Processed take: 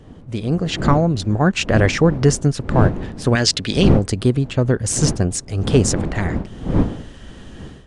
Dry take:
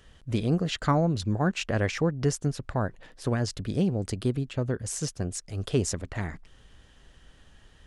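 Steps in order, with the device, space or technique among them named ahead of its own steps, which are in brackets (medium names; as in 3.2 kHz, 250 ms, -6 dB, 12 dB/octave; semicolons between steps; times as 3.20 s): 3.35–3.93 s: frequency weighting D; smartphone video outdoors (wind noise 240 Hz; level rider gain up to 15 dB; AAC 96 kbps 22.05 kHz)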